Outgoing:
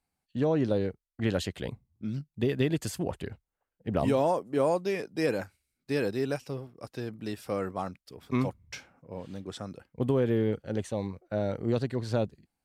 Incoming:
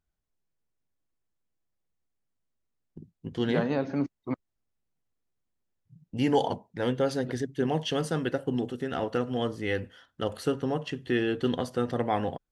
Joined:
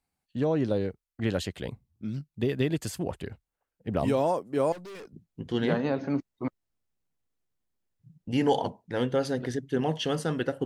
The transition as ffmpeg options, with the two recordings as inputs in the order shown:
ffmpeg -i cue0.wav -i cue1.wav -filter_complex "[0:a]asettb=1/sr,asplit=3[link_01][link_02][link_03];[link_01]atrim=end=4.724[link_04];[link_02]atrim=start=4.72:end=5.13,asetpts=PTS-STARTPTS,afade=type=in:duration=0.004:curve=qsin,afade=type=out:start_time=0.406:duration=0.004:curve=qsin,aeval=exprs='(tanh(112*val(0)+0.15)-tanh(0.15))/112':channel_layout=same[link_05];[link_03]atrim=start=5.126[link_06];[link_04][link_05]acrossfade=duration=0.004:curve1=hsin:curve2=qsin[link_07];[link_07][link_06]acrossfade=duration=0.004:curve1=qsin:curve2=hsin,apad=whole_dur=10.65,atrim=end=10.65,atrim=end=5.132[link_08];[1:a]atrim=start=2.988:end=8.51[link_09];[link_08][link_09]acrossfade=duration=0.004:curve1=hsin:curve2=hsin" out.wav

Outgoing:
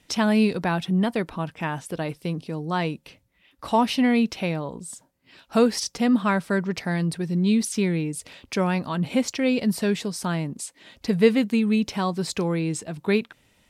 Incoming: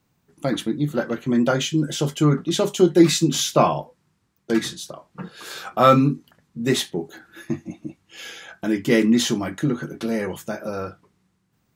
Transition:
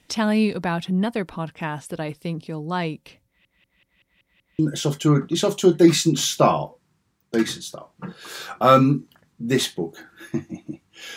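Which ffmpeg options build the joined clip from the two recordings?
ffmpeg -i cue0.wav -i cue1.wav -filter_complex "[0:a]apad=whole_dur=11.16,atrim=end=11.16,asplit=7[link_01][link_02][link_03][link_04][link_05][link_06][link_07];[link_01]atrim=end=3.452[link_08];[link_02]atrim=start=3.258:end=3.452[link_09];[link_03]atrim=start=3.258:end=3.452[link_10];[link_04]atrim=start=3.258:end=3.452[link_11];[link_05]atrim=start=3.258:end=3.452[link_12];[link_06]atrim=start=3.258:end=3.452[link_13];[link_07]atrim=start=3.258:end=3.452[link_14];[1:a]atrim=start=1.748:end=8.32[link_15];[link_08][link_09]acrossfade=duration=0.004:curve1=hsin:curve2=hsin[link_16];[link_16][link_10]acrossfade=duration=0.004:curve1=hsin:curve2=hsin[link_17];[link_17][link_11]acrossfade=duration=0.004:curve1=hsin:curve2=hsin[link_18];[link_18][link_12]acrossfade=duration=0.004:curve1=hsin:curve2=hsin[link_19];[link_19][link_13]acrossfade=duration=0.004:curve1=hsin:curve2=hsin[link_20];[link_20][link_14]acrossfade=duration=0.004:curve1=hsin:curve2=hsin[link_21];[link_21][link_15]acrossfade=duration=0.004:curve1=hsin:curve2=hsin" out.wav

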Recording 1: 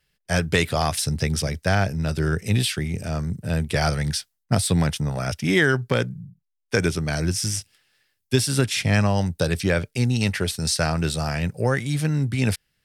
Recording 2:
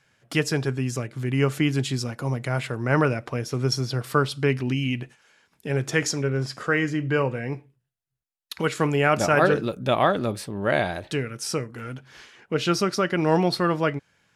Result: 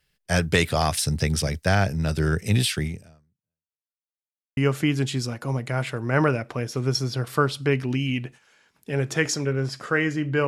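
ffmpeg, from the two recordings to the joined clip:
ffmpeg -i cue0.wav -i cue1.wav -filter_complex "[0:a]apad=whole_dur=10.47,atrim=end=10.47,asplit=2[link_01][link_02];[link_01]atrim=end=3.83,asetpts=PTS-STARTPTS,afade=type=out:start_time=2.87:duration=0.96:curve=exp[link_03];[link_02]atrim=start=3.83:end=4.57,asetpts=PTS-STARTPTS,volume=0[link_04];[1:a]atrim=start=1.34:end=7.24,asetpts=PTS-STARTPTS,afade=type=in:duration=0.004:curve=hsin[link_05];[link_03][link_04][link_05]concat=n=3:v=0:a=1" out.wav

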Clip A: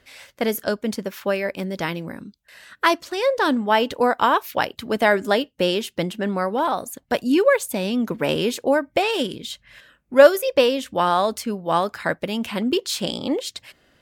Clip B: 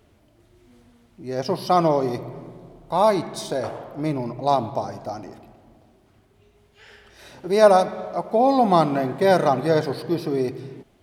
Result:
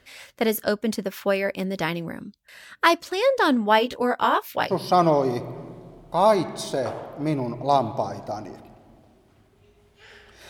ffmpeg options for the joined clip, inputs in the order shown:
ffmpeg -i cue0.wav -i cue1.wav -filter_complex "[0:a]asplit=3[link_01][link_02][link_03];[link_01]afade=type=out:start_time=3.78:duration=0.02[link_04];[link_02]flanger=delay=15.5:depth=5.9:speed=0.26,afade=type=in:start_time=3.78:duration=0.02,afade=type=out:start_time=4.73:duration=0.02[link_05];[link_03]afade=type=in:start_time=4.73:duration=0.02[link_06];[link_04][link_05][link_06]amix=inputs=3:normalize=0,apad=whole_dur=10.49,atrim=end=10.49,atrim=end=4.73,asetpts=PTS-STARTPTS[link_07];[1:a]atrim=start=1.45:end=7.27,asetpts=PTS-STARTPTS[link_08];[link_07][link_08]acrossfade=duration=0.06:curve1=tri:curve2=tri" out.wav

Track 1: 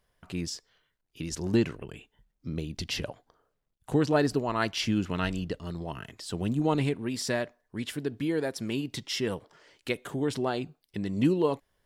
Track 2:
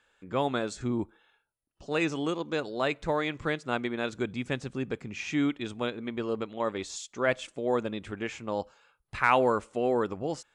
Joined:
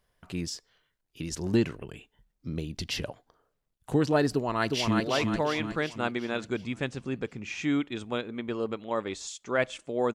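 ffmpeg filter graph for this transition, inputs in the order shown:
ffmpeg -i cue0.wav -i cue1.wav -filter_complex "[0:a]apad=whole_dur=10.14,atrim=end=10.14,atrim=end=5.002[link_01];[1:a]atrim=start=2.688:end=7.83[link_02];[link_01][link_02]acrossfade=duration=0.004:curve1=hsin:curve2=hsin,asplit=2[link_03][link_04];[link_04]afade=type=in:start_time=4.33:duration=0.01,afade=type=out:start_time=5:duration=0.01,aecho=0:1:360|720|1080|1440|1800|2160|2520:0.707946|0.353973|0.176986|0.0884932|0.0442466|0.0221233|0.0110617[link_05];[link_03][link_05]amix=inputs=2:normalize=0" out.wav

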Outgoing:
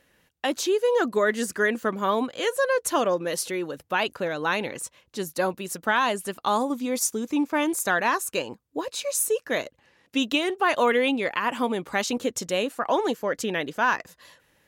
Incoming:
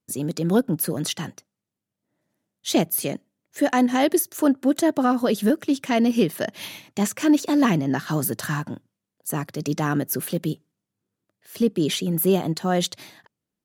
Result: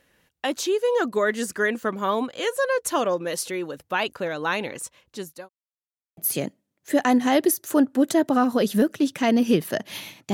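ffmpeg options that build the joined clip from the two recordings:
ffmpeg -i cue0.wav -i cue1.wav -filter_complex "[0:a]apad=whole_dur=10.33,atrim=end=10.33,asplit=2[link_01][link_02];[link_01]atrim=end=5.49,asetpts=PTS-STARTPTS,afade=type=out:start_time=5.07:duration=0.42[link_03];[link_02]atrim=start=5.49:end=6.17,asetpts=PTS-STARTPTS,volume=0[link_04];[1:a]atrim=start=2.85:end=7.01,asetpts=PTS-STARTPTS,afade=type=in:duration=0.004:curve=hsin[link_05];[link_03][link_04][link_05]concat=n=3:v=0:a=1" out.wav

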